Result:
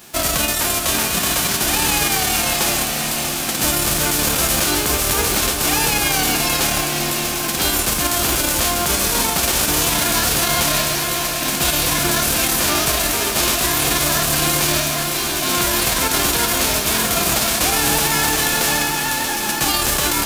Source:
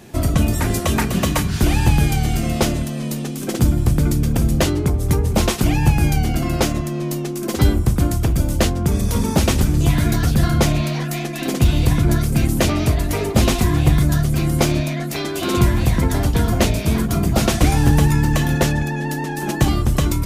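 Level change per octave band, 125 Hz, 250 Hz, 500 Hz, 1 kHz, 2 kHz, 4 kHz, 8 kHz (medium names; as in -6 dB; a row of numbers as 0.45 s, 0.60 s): -12.0 dB, -6.0 dB, -0.5 dB, +5.0 dB, +7.5 dB, +10.0 dB, +12.0 dB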